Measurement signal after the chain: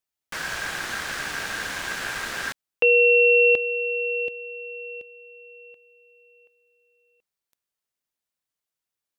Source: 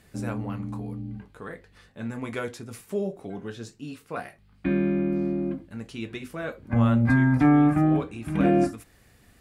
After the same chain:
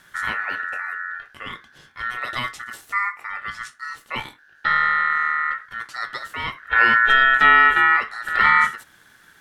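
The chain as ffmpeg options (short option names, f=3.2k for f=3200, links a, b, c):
-filter_complex "[0:a]aeval=exprs='val(0)*sin(2*PI*1600*n/s)':c=same,acrossover=split=8900[a][b];[b]acompressor=threshold=-54dB:ratio=4:attack=1:release=60[c];[a][c]amix=inputs=2:normalize=0,volume=7.5dB"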